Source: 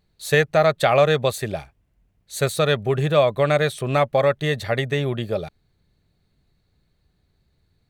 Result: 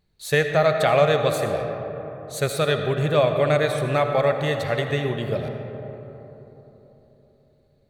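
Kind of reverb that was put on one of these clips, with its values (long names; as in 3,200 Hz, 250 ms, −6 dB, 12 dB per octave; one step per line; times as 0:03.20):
comb and all-pass reverb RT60 3.9 s, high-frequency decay 0.35×, pre-delay 35 ms, DRR 5 dB
level −2.5 dB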